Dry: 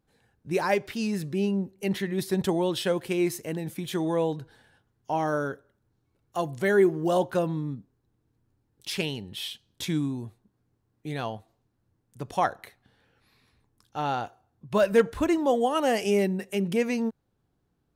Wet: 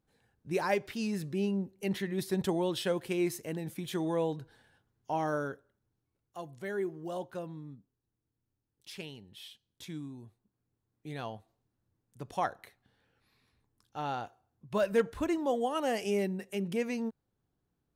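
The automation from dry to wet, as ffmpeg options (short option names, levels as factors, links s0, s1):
-af "volume=1.26,afade=t=out:st=5.31:d=1.07:silence=0.354813,afade=t=in:st=10.1:d=1.25:silence=0.446684"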